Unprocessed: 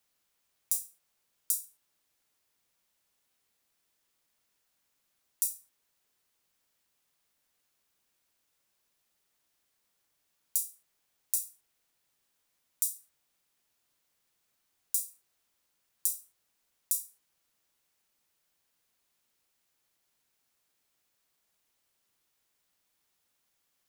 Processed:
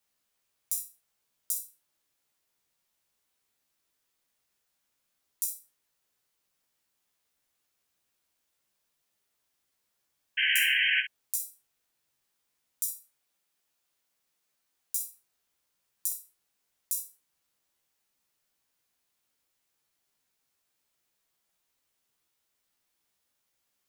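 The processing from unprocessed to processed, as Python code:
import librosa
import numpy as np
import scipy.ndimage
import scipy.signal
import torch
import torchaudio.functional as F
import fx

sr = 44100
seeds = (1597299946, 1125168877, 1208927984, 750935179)

y = fx.spec_paint(x, sr, seeds[0], shape='noise', start_s=10.37, length_s=0.64, low_hz=1500.0, high_hz=3200.0, level_db=-24.0)
y = fx.low_shelf(y, sr, hz=170.0, db=-6.5, at=(12.89, 15.03))
y = fx.room_early_taps(y, sr, ms=(15, 62), db=(-3.5, -8.5))
y = F.gain(torch.from_numpy(y), -3.5).numpy()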